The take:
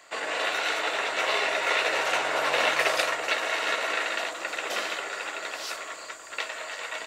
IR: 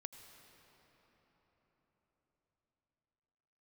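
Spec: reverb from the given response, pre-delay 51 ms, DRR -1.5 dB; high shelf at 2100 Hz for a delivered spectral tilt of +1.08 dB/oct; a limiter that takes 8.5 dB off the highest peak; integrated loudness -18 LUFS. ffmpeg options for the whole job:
-filter_complex "[0:a]highshelf=f=2.1k:g=6,alimiter=limit=-15dB:level=0:latency=1,asplit=2[a][b];[1:a]atrim=start_sample=2205,adelay=51[c];[b][c]afir=irnorm=-1:irlink=0,volume=6dB[d];[a][d]amix=inputs=2:normalize=0,volume=4dB"

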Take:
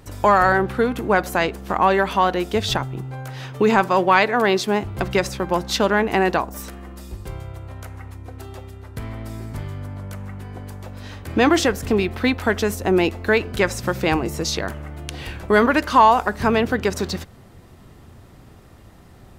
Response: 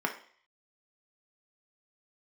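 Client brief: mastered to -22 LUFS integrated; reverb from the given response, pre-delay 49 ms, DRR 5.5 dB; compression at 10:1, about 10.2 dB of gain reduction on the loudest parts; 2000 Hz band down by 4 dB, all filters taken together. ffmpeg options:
-filter_complex "[0:a]equalizer=f=2k:t=o:g=-5.5,acompressor=threshold=-19dB:ratio=10,asplit=2[a][b];[1:a]atrim=start_sample=2205,adelay=49[c];[b][c]afir=irnorm=-1:irlink=0,volume=-13.5dB[d];[a][d]amix=inputs=2:normalize=0,volume=3.5dB"

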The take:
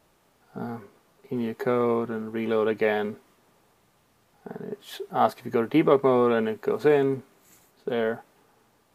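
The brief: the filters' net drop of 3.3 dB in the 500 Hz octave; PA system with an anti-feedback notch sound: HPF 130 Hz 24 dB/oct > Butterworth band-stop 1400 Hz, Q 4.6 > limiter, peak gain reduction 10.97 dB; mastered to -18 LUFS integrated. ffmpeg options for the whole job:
-af "highpass=f=130:w=0.5412,highpass=f=130:w=1.3066,asuperstop=centerf=1400:order=8:qfactor=4.6,equalizer=f=500:t=o:g=-4,volume=13.5dB,alimiter=limit=-5.5dB:level=0:latency=1"

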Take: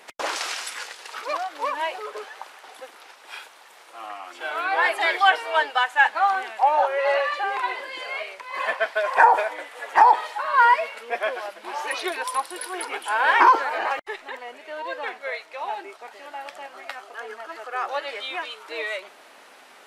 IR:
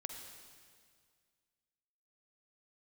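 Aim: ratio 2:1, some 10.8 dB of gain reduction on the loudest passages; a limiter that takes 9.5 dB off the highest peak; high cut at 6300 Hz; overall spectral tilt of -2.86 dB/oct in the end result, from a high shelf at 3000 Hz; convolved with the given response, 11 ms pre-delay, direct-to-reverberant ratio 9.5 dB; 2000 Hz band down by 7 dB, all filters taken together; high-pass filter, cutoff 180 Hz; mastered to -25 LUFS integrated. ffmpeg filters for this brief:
-filter_complex "[0:a]highpass=180,lowpass=6.3k,equalizer=f=2k:t=o:g=-8,highshelf=f=3k:g=-4.5,acompressor=threshold=-32dB:ratio=2,alimiter=level_in=0.5dB:limit=-24dB:level=0:latency=1,volume=-0.5dB,asplit=2[a][b];[1:a]atrim=start_sample=2205,adelay=11[c];[b][c]afir=irnorm=-1:irlink=0,volume=-7.5dB[d];[a][d]amix=inputs=2:normalize=0,volume=10dB"

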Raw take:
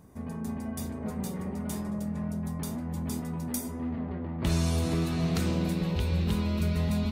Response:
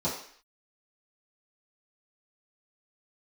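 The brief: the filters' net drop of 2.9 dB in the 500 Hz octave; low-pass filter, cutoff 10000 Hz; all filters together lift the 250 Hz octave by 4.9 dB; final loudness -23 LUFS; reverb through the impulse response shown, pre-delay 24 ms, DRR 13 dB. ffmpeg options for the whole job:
-filter_complex "[0:a]lowpass=10k,equalizer=f=250:t=o:g=8,equalizer=f=500:t=o:g=-7.5,asplit=2[a][b];[1:a]atrim=start_sample=2205,adelay=24[c];[b][c]afir=irnorm=-1:irlink=0,volume=-21.5dB[d];[a][d]amix=inputs=2:normalize=0,volume=2.5dB"

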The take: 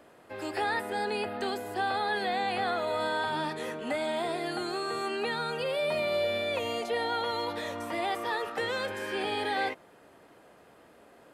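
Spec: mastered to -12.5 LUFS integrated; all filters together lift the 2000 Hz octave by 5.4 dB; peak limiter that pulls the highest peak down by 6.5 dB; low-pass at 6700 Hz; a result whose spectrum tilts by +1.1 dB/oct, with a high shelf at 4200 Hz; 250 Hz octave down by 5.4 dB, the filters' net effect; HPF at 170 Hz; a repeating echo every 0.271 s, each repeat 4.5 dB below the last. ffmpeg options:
-af "highpass=170,lowpass=6.7k,equalizer=f=250:t=o:g=-7,equalizer=f=2k:t=o:g=6,highshelf=f=4.2k:g=4.5,alimiter=limit=-22dB:level=0:latency=1,aecho=1:1:271|542|813|1084|1355|1626|1897|2168|2439:0.596|0.357|0.214|0.129|0.0772|0.0463|0.0278|0.0167|0.01,volume=16.5dB"

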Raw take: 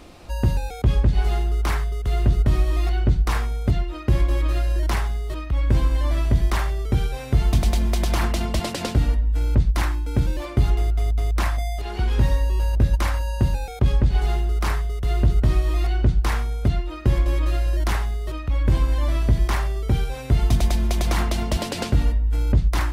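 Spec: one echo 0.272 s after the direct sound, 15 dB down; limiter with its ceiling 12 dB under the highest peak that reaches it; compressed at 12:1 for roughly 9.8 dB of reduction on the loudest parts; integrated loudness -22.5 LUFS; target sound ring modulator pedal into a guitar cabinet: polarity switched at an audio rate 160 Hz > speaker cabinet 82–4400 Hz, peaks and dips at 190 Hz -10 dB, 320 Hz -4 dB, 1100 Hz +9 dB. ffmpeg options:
-af "acompressor=threshold=-22dB:ratio=12,alimiter=limit=-23.5dB:level=0:latency=1,aecho=1:1:272:0.178,aeval=exprs='val(0)*sgn(sin(2*PI*160*n/s))':c=same,highpass=82,equalizer=f=190:t=q:w=4:g=-10,equalizer=f=320:t=q:w=4:g=-4,equalizer=f=1.1k:t=q:w=4:g=9,lowpass=f=4.4k:w=0.5412,lowpass=f=4.4k:w=1.3066,volume=8.5dB"

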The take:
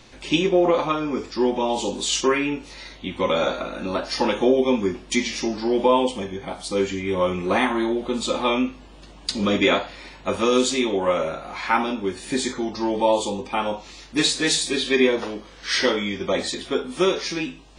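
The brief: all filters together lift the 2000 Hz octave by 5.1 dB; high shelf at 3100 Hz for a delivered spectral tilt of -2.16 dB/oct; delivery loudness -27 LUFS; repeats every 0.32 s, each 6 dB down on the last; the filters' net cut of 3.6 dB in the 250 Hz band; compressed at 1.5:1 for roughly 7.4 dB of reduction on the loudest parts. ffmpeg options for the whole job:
-af "equalizer=f=250:t=o:g=-5,equalizer=f=2k:t=o:g=4,highshelf=f=3.1k:g=6,acompressor=threshold=-34dB:ratio=1.5,aecho=1:1:320|640|960|1280|1600|1920:0.501|0.251|0.125|0.0626|0.0313|0.0157,volume=-0.5dB"

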